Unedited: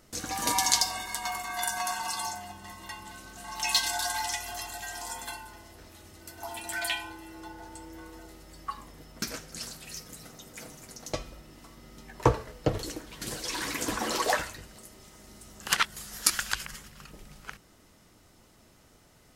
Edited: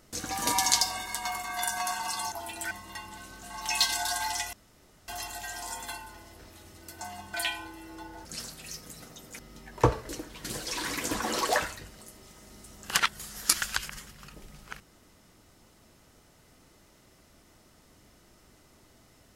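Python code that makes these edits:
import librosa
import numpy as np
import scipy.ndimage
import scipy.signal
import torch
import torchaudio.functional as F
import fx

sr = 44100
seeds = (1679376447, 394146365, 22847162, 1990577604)

y = fx.edit(x, sr, fx.swap(start_s=2.32, length_s=0.33, other_s=6.4, other_length_s=0.39),
    fx.insert_room_tone(at_s=4.47, length_s=0.55),
    fx.cut(start_s=7.7, length_s=1.78),
    fx.cut(start_s=10.62, length_s=1.19),
    fx.cut(start_s=12.51, length_s=0.35), tone=tone)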